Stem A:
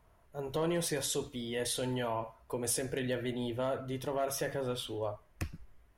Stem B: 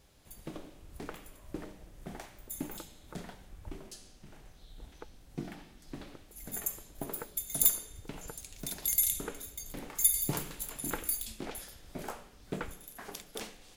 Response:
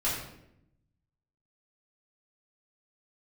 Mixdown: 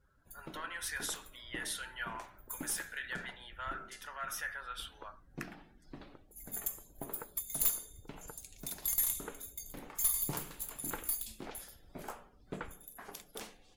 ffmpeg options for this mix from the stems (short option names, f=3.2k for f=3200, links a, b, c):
-filter_complex "[0:a]highpass=f=1.5k:t=q:w=3.8,volume=-7dB[a];[1:a]aeval=exprs='(tanh(14.1*val(0)+0.4)-tanh(0.4))/14.1':c=same,volume=-4.5dB[b];[a][b]amix=inputs=2:normalize=0,afftdn=nr=18:nf=-66,equalizer=f=1.1k:w=1:g=4,crystalizer=i=0.5:c=0"